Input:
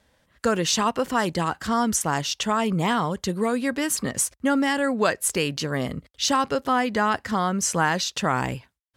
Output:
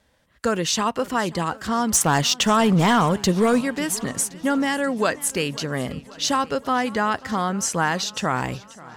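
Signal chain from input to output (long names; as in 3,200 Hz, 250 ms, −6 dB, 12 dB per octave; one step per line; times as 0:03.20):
0:01.93–0:03.61: leveller curve on the samples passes 2
feedback echo with a swinging delay time 534 ms, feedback 63%, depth 106 cents, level −20.5 dB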